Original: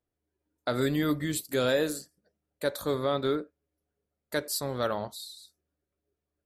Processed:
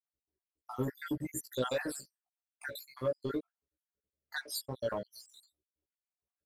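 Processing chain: random spectral dropouts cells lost 72%; sample leveller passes 1; doubler 16 ms -2 dB; gain -8 dB

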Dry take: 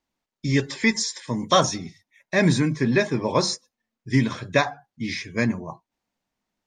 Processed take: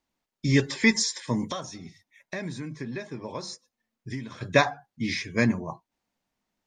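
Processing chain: 1.51–4.41 compressor 4:1, threshold -35 dBFS, peak gain reduction 18.5 dB

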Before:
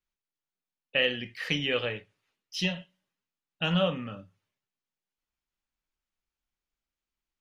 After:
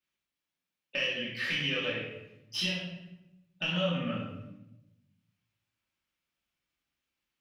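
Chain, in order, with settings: tracing distortion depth 0.024 ms; HPF 84 Hz; bell 2700 Hz +6 dB 1.1 oct; compressor 6:1, threshold -31 dBFS, peak gain reduction 14 dB; shoebox room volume 340 m³, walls mixed, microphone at 2.6 m; gain -4 dB

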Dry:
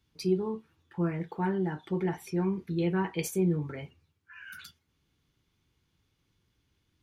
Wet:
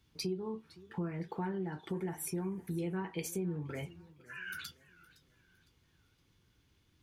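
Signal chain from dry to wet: 1.89–2.97 resonant high shelf 6400 Hz +12 dB, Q 1.5; compressor 4:1, threshold -39 dBFS, peak gain reduction 15 dB; warbling echo 0.511 s, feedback 38%, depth 147 cents, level -20 dB; gain +3 dB

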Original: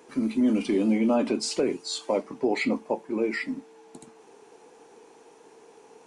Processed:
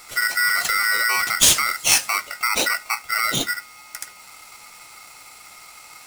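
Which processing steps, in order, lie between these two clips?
limiter -20 dBFS, peak gain reduction 5.5 dB; tone controls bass -1 dB, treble +15 dB; polarity switched at an audio rate 1700 Hz; gain +6.5 dB

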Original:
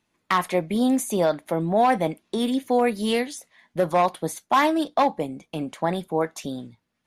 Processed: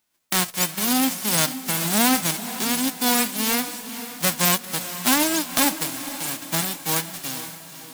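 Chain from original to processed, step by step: spectral whitening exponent 0.1; tempo 0.89×; diffused feedback echo 0.491 s, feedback 50%, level -12 dB

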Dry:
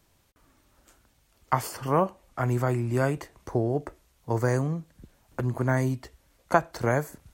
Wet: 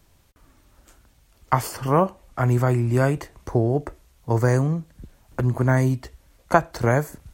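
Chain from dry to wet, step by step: low shelf 100 Hz +7.5 dB; gain +4 dB

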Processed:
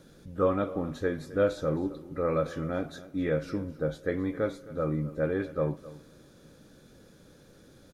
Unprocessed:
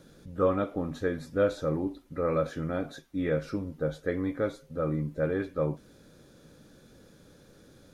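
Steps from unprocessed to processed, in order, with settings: echo 0.263 s -18 dB; on a send at -23.5 dB: reverb RT60 2.4 s, pre-delay 3 ms

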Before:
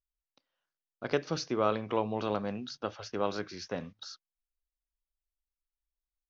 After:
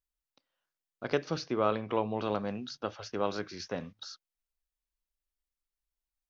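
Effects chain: 1.36–2.26 LPF 4800 Hz 12 dB/oct; 3.6–4.06 upward compressor, threshold -40 dBFS

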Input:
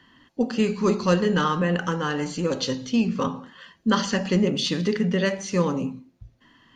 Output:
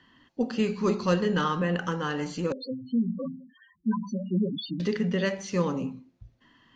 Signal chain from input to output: LPF 6900 Hz 12 dB/oct; 2.52–4.8 loudest bins only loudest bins 4; gain -4 dB

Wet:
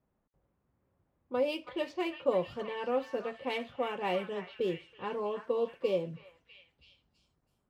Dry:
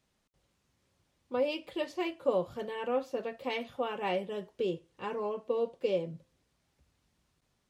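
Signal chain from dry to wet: median filter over 5 samples; low-pass opened by the level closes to 1100 Hz, open at -29.5 dBFS; on a send: delay with a stepping band-pass 0.325 s, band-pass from 1500 Hz, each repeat 0.7 oct, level -6 dB

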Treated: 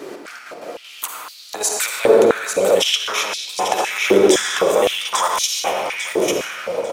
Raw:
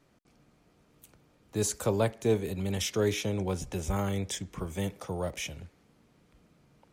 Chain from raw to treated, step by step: 5.2–5.61 high shelf 6000 Hz +10.5 dB; compressor 6:1, threshold -41 dBFS, peak gain reduction 19 dB; step gate "xx.xx.x.xx.xxx." 196 bpm -12 dB; feedback echo 0.845 s, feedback 30%, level -7 dB; reverb RT60 2.9 s, pre-delay 43 ms, DRR 0.5 dB; maximiser +36 dB; stepped high-pass 3.9 Hz 380–4200 Hz; gain -6.5 dB

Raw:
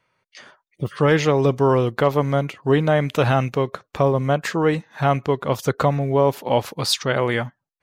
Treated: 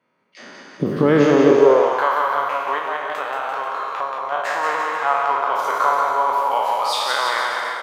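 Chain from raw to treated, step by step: spectral trails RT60 1.40 s; recorder AGC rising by 11 dB/s; high shelf 2200 Hz -9.5 dB; 2.78–4.32 compressor, threshold -18 dBFS, peak gain reduction 7 dB; bouncing-ball echo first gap 0.18 s, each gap 0.9×, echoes 5; high-pass sweep 230 Hz -> 1000 Hz, 1.37–2.08; gain -2 dB

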